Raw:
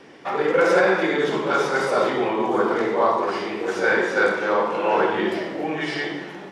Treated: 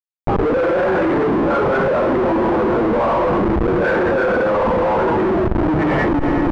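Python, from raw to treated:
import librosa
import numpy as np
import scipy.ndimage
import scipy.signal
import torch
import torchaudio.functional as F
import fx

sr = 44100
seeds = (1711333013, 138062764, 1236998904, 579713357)

y = fx.noise_reduce_blind(x, sr, reduce_db=13)
y = fx.schmitt(y, sr, flips_db=-30.0)
y = scipy.signal.sosfilt(scipy.signal.butter(2, 1200.0, 'lowpass', fs=sr, output='sos'), y)
y = fx.low_shelf(y, sr, hz=120.0, db=-5.0)
y = fx.echo_feedback(y, sr, ms=93, feedback_pct=60, wet_db=-22.5)
y = fx.env_flatten(y, sr, amount_pct=100)
y = y * 10.0 ** (7.5 / 20.0)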